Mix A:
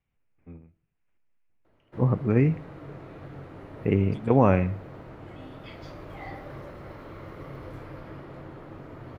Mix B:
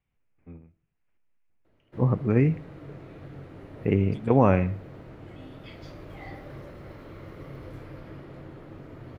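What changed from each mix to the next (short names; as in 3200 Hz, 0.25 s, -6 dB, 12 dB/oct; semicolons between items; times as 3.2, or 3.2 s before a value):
background: add bell 1000 Hz -5.5 dB 1.5 oct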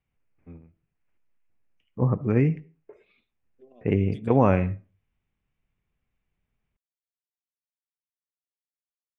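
background: muted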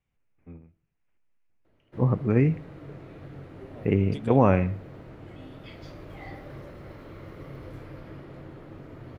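second voice +7.0 dB; background: unmuted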